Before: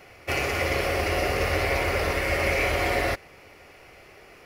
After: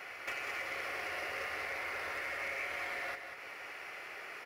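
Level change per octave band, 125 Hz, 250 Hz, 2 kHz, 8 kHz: -32.0, -23.0, -10.0, -15.5 dB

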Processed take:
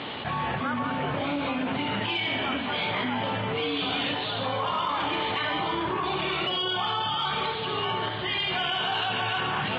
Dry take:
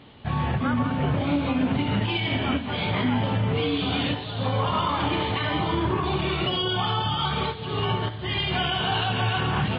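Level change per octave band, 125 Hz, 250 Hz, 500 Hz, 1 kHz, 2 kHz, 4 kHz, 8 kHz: -11.5 dB, -6.5 dB, -2.5 dB, -0.5 dB, +1.0 dB, 0.0 dB, n/a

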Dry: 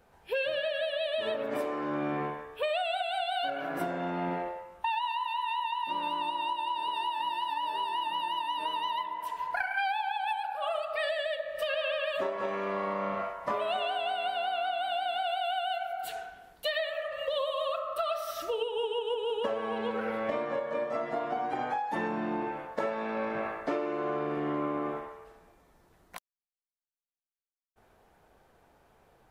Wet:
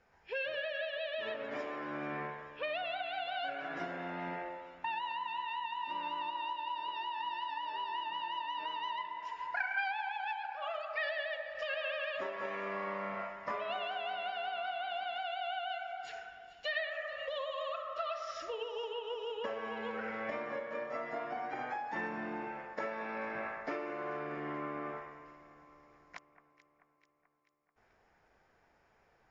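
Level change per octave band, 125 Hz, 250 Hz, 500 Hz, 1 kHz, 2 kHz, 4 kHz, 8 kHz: -8.5 dB, -9.0 dB, -8.0 dB, -6.5 dB, -2.0 dB, -7.0 dB, under -10 dB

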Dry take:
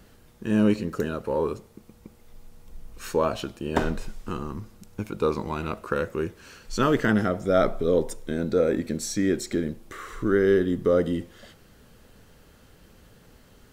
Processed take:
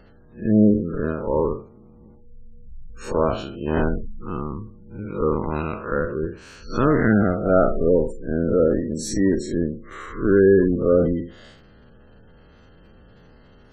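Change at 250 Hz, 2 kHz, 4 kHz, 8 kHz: +5.0, +1.5, -3.5, -1.0 dB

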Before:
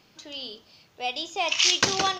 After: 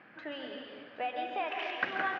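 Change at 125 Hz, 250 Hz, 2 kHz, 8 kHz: under -15 dB, -6.5 dB, -5.5 dB, under -40 dB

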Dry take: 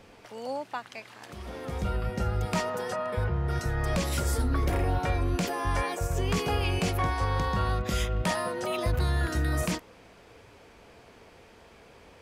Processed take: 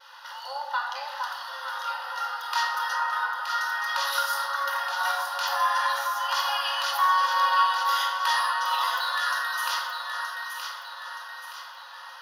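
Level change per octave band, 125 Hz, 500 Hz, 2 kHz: under -40 dB, -10.0 dB, +9.0 dB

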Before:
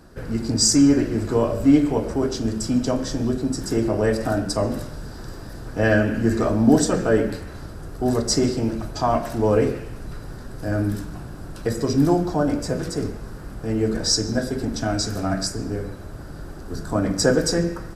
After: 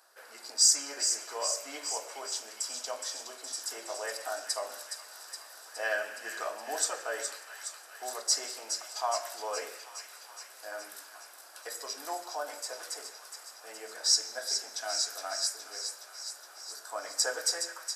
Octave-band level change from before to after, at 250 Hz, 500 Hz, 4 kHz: -37.0, -17.0, -3.5 dB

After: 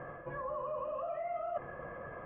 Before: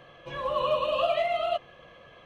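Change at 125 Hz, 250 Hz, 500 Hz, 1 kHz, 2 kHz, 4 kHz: -3.5 dB, -4.5 dB, -10.5 dB, -10.0 dB, -10.5 dB, under -35 dB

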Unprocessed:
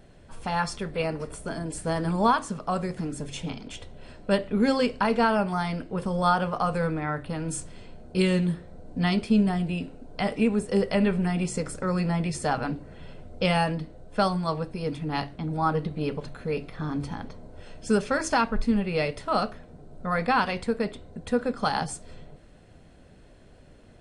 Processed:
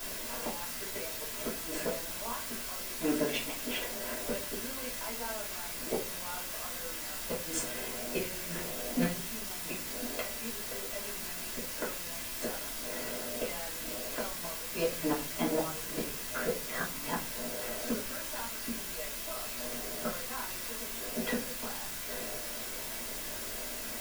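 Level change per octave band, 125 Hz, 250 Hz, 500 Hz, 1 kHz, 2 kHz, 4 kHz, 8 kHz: -17.0, -12.5, -9.5, -14.0, -6.5, -2.0, +5.0 dB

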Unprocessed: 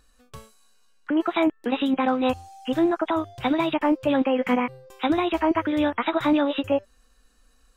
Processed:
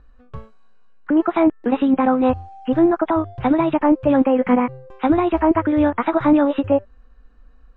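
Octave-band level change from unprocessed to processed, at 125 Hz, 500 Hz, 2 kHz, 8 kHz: +10.0 dB, +5.5 dB, 0.0 dB, n/a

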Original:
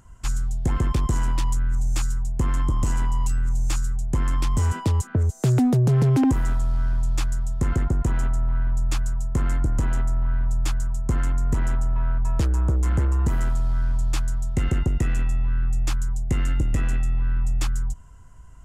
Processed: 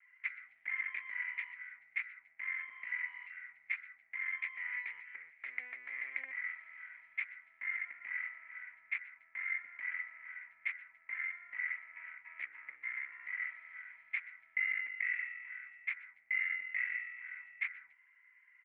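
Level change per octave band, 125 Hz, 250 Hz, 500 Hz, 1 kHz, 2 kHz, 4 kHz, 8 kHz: under -40 dB, under -40 dB, under -35 dB, -23.0 dB, +4.5 dB, under -20 dB, under -40 dB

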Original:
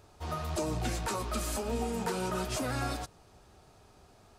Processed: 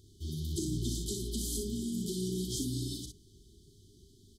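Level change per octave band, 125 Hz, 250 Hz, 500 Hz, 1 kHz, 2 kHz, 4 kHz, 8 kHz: +0.5 dB, +1.5 dB, -6.0 dB, under -40 dB, under -40 dB, +1.0 dB, +1.5 dB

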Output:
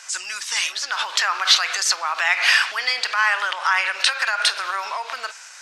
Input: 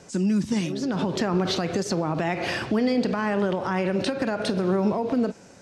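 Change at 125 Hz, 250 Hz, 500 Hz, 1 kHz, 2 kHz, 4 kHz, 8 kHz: under -40 dB, under -35 dB, -13.0 dB, +6.5 dB, +14.5 dB, +14.5 dB, +14.5 dB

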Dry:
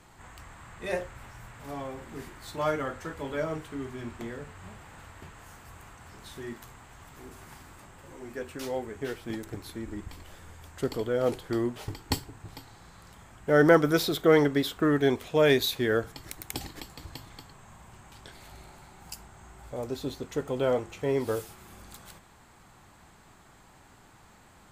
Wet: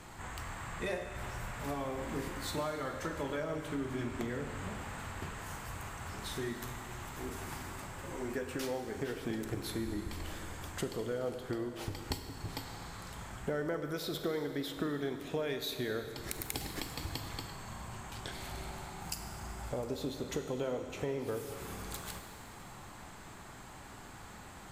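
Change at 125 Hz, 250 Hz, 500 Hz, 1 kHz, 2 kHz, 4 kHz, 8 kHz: -5.0, -8.0, -10.0, -6.0, -8.0, -5.5, -0.5 dB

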